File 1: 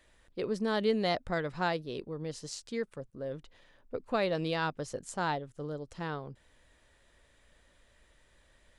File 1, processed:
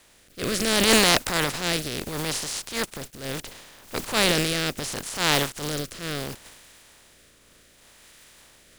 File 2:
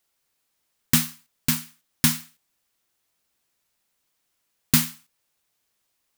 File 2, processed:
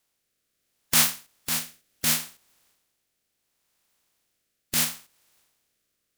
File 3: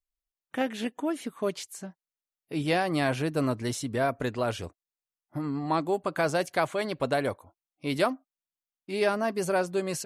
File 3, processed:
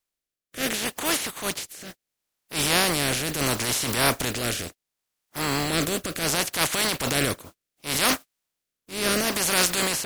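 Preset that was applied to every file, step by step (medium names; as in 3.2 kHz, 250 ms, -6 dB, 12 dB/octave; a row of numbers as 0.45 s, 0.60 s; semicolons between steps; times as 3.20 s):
spectral contrast reduction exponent 0.32; transient shaper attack -9 dB, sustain +7 dB; rotary cabinet horn 0.7 Hz; normalise loudness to -24 LUFS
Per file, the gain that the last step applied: +12.0 dB, +4.0 dB, +7.5 dB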